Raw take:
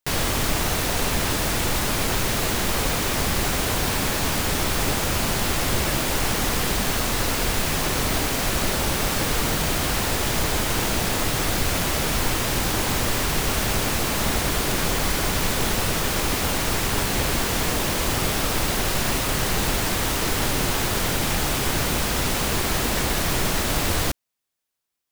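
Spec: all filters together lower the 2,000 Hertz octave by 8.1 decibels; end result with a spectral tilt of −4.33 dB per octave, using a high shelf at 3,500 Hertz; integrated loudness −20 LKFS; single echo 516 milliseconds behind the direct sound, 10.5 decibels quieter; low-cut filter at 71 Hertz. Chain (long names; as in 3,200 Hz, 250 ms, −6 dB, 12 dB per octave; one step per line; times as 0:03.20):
high-pass filter 71 Hz
parametric band 2,000 Hz −8 dB
high-shelf EQ 3,500 Hz −8.5 dB
single-tap delay 516 ms −10.5 dB
level +6.5 dB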